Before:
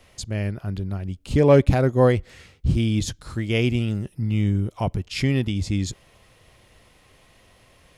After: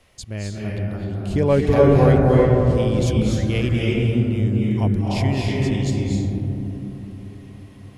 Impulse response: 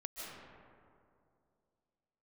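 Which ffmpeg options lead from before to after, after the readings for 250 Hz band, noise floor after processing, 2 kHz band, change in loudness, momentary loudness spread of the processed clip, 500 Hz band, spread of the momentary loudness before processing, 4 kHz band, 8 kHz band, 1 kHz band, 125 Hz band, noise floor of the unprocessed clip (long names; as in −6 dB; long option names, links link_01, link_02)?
+4.0 dB, −42 dBFS, +1.5 dB, +3.5 dB, 16 LU, +3.5 dB, 14 LU, +0.5 dB, −0.5 dB, +4.0 dB, +4.0 dB, −56 dBFS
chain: -filter_complex "[1:a]atrim=start_sample=2205,asetrate=26460,aresample=44100[link_01];[0:a][link_01]afir=irnorm=-1:irlink=0"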